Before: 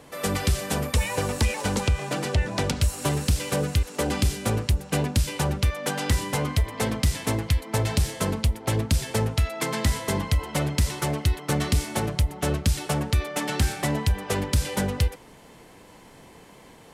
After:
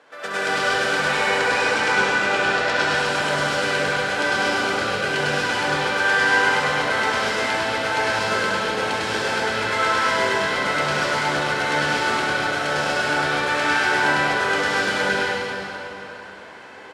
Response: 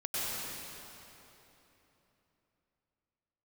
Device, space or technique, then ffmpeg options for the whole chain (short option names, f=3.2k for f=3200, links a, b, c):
station announcement: -filter_complex "[0:a]highpass=460,lowpass=4.6k,equalizer=f=1.5k:t=o:w=0.31:g=12,aecho=1:1:67.06|102:0.501|0.794[a];[1:a]atrim=start_sample=2205[b];[a][b]afir=irnorm=-1:irlink=0"